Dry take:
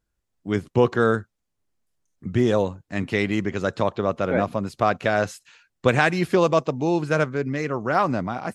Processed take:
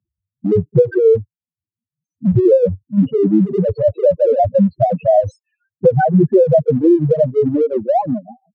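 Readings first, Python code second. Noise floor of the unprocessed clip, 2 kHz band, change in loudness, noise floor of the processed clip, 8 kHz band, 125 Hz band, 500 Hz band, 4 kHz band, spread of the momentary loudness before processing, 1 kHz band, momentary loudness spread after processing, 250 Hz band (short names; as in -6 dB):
-78 dBFS, -9.5 dB, +8.0 dB, under -85 dBFS, under -15 dB, +8.0 dB, +10.0 dB, under -15 dB, 8 LU, +3.5 dB, 6 LU, +8.5 dB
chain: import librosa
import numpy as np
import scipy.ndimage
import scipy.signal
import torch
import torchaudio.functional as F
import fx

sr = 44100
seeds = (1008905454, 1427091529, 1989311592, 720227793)

p1 = fx.fade_out_tail(x, sr, length_s=1.96)
p2 = scipy.signal.sosfilt(scipy.signal.butter(4, 76.0, 'highpass', fs=sr, output='sos'), p1)
p3 = fx.leveller(p2, sr, passes=5)
p4 = fx.dynamic_eq(p3, sr, hz=480.0, q=1.7, threshold_db=-21.0, ratio=4.0, max_db=3)
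p5 = fx.chopper(p4, sr, hz=5.7, depth_pct=65, duty_pct=65)
p6 = fx.spec_topn(p5, sr, count=2)
p7 = np.sign(p6) * np.maximum(np.abs(p6) - 10.0 ** (-30.5 / 20.0), 0.0)
p8 = p6 + F.gain(torch.from_numpy(p7), -12.0).numpy()
p9 = fx.high_shelf(p8, sr, hz=6300.0, db=-8.0)
p10 = fx.notch(p9, sr, hz=410.0, q=13.0)
y = fx.band_squash(p10, sr, depth_pct=70)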